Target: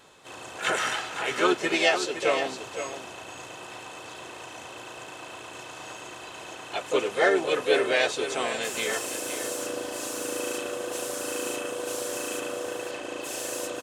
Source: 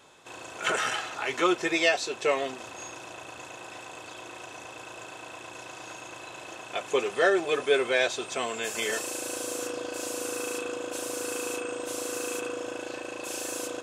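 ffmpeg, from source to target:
ffmpeg -i in.wav -filter_complex "[0:a]lowshelf=frequency=93:gain=3.5,asplit=3[link_01][link_02][link_03];[link_02]asetrate=33038,aresample=44100,atempo=1.33484,volume=-15dB[link_04];[link_03]asetrate=52444,aresample=44100,atempo=0.840896,volume=-6dB[link_05];[link_01][link_04][link_05]amix=inputs=3:normalize=0,asplit=2[link_06][link_07];[link_07]aecho=0:1:514:0.316[link_08];[link_06][link_08]amix=inputs=2:normalize=0" out.wav

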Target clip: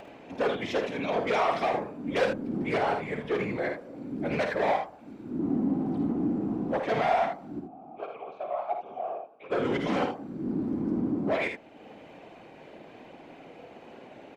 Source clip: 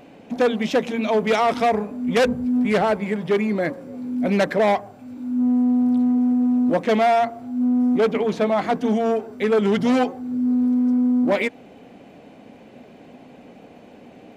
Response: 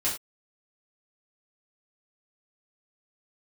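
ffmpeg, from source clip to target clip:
-filter_complex "[0:a]acompressor=mode=upward:threshold=-33dB:ratio=2.5,asplit=3[link_01][link_02][link_03];[link_01]afade=type=out:start_time=7.59:duration=0.02[link_04];[link_02]asplit=3[link_05][link_06][link_07];[link_05]bandpass=frequency=730:width_type=q:width=8,volume=0dB[link_08];[link_06]bandpass=frequency=1090:width_type=q:width=8,volume=-6dB[link_09];[link_07]bandpass=frequency=2440:width_type=q:width=8,volume=-9dB[link_10];[link_08][link_09][link_10]amix=inputs=3:normalize=0,afade=type=in:start_time=7.59:duration=0.02,afade=type=out:start_time=9.5:duration=0.02[link_11];[link_03]afade=type=in:start_time=9.5:duration=0.02[link_12];[link_04][link_11][link_12]amix=inputs=3:normalize=0,afftfilt=real='hypot(re,im)*cos(2*PI*random(0))':imag='hypot(re,im)*sin(2*PI*random(1))':win_size=512:overlap=0.75,asplit=2[link_13][link_14];[link_14]highpass=frequency=720:poles=1,volume=13dB,asoftclip=type=tanh:threshold=-10.5dB[link_15];[link_13][link_15]amix=inputs=2:normalize=0,lowpass=frequency=2600:poles=1,volume=-6dB,asplit=2[link_16][link_17];[link_17]aecho=0:1:53|78:0.422|0.398[link_18];[link_16][link_18]amix=inputs=2:normalize=0,volume=-5.5dB"

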